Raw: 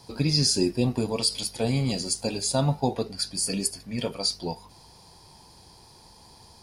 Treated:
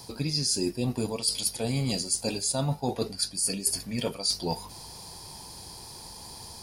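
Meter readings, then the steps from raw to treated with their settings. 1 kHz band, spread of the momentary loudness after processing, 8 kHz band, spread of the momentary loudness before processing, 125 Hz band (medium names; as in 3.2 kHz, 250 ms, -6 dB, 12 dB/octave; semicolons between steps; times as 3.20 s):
-3.0 dB, 16 LU, +1.0 dB, 9 LU, -4.0 dB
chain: treble shelf 7.1 kHz +11 dB; reverse; compression 6:1, threshold -31 dBFS, peak gain reduction 16 dB; reverse; trim +5.5 dB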